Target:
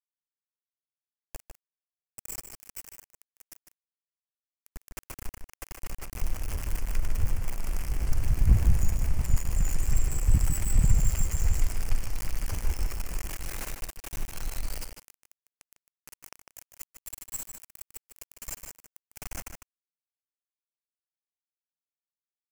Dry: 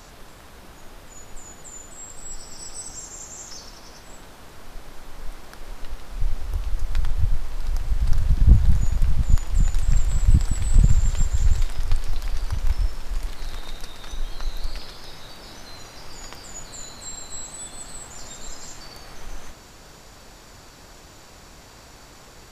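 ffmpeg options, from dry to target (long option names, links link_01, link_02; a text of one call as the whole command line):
ffmpeg -i in.wav -filter_complex "[0:a]aeval=exprs='val(0)*gte(abs(val(0)),0.0447)':channel_layout=same,asplit=2[link_01][link_02];[link_02]adelay=151.6,volume=-6dB,highshelf=frequency=4000:gain=-3.41[link_03];[link_01][link_03]amix=inputs=2:normalize=0,aexciter=amount=1.4:drive=0.9:freq=2000,volume=-6.5dB" out.wav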